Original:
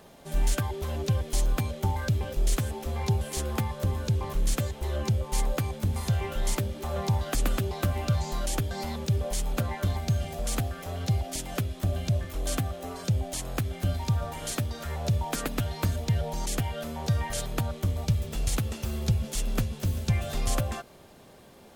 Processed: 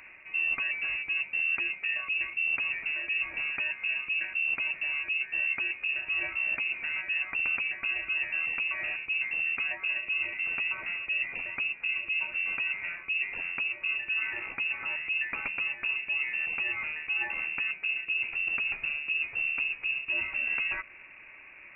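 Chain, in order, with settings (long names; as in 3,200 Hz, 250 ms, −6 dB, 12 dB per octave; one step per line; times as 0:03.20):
reversed playback
downward compressor, threshold −32 dBFS, peak gain reduction 13 dB
reversed playback
voice inversion scrambler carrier 2,700 Hz
level +2.5 dB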